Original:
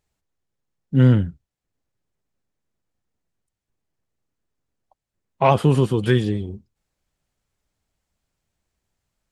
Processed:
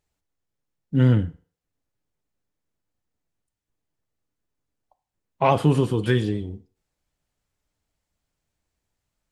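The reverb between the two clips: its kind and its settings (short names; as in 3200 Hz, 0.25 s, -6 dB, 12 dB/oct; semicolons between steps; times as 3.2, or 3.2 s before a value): FDN reverb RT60 0.44 s, low-frequency decay 0.7×, high-frequency decay 0.85×, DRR 10.5 dB; gain -2.5 dB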